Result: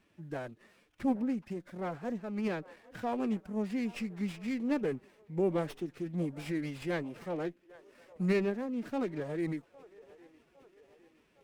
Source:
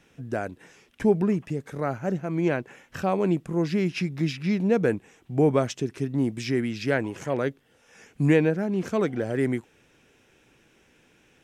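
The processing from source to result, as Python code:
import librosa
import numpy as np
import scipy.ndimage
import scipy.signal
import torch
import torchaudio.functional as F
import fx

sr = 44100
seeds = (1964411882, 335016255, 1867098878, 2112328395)

y = fx.echo_wet_bandpass(x, sr, ms=810, feedback_pct=52, hz=780.0, wet_db=-19)
y = fx.pitch_keep_formants(y, sr, semitones=4.0)
y = fx.running_max(y, sr, window=5)
y = F.gain(torch.from_numpy(y), -9.0).numpy()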